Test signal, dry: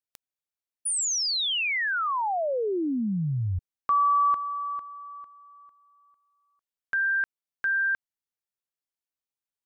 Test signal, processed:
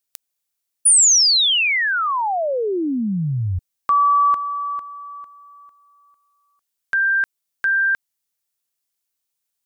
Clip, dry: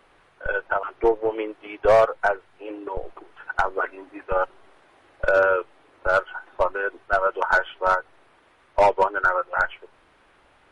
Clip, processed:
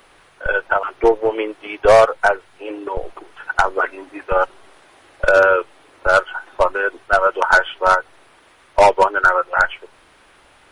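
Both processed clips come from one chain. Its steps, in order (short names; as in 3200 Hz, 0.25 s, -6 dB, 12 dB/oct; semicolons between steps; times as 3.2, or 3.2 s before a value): high shelf 3800 Hz +11 dB; gain +5.5 dB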